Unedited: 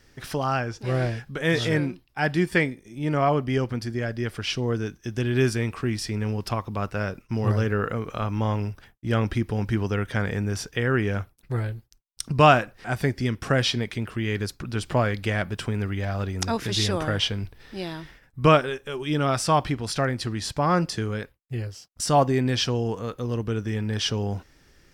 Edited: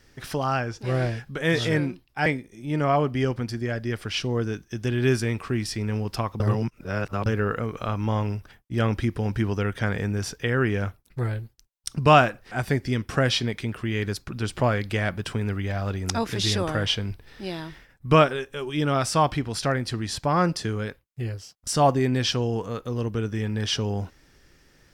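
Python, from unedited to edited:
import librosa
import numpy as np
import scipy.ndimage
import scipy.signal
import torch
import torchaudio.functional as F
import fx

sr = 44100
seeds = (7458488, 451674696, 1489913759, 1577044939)

y = fx.edit(x, sr, fx.cut(start_s=2.26, length_s=0.33),
    fx.reverse_span(start_s=6.73, length_s=0.86), tone=tone)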